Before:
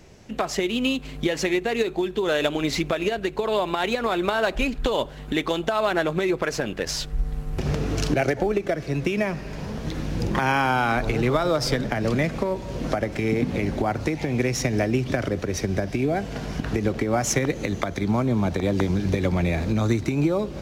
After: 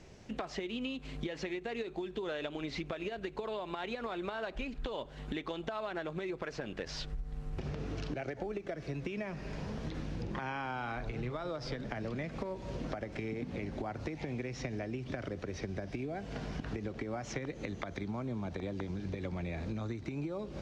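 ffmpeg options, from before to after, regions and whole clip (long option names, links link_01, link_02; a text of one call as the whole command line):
ffmpeg -i in.wav -filter_complex "[0:a]asettb=1/sr,asplit=3[link_01][link_02][link_03];[link_01]atrim=end=10.774[link_04];[link_02]atrim=start=10.77:end=11.32,asetpts=PTS-STARTPTS,afade=type=in:duration=0.004:curve=qsin,afade=type=out:start_time=0.546:duration=0.004:curve=qsin,asubboost=boost=7.5:cutoff=200,asplit=2[link_05][link_06];[link_06]adelay=41,volume=-12dB[link_07];[link_05][link_07]amix=inputs=2:normalize=0,atrim=end_sample=24255[link_08];[link_03]atrim=start=11.316[link_09];[link_04][link_08]acrossfade=duration=0.004:curve1=hsin:curve2=qsin[link_10];[link_10][link_09]acrossfade=duration=0.004:curve1=qsin:curve2=hsin,acrossover=split=5000[link_11][link_12];[link_12]acompressor=threshold=-51dB:ratio=4:attack=1:release=60[link_13];[link_11][link_13]amix=inputs=2:normalize=0,lowpass=7600,acompressor=threshold=-30dB:ratio=6,volume=-5.5dB" out.wav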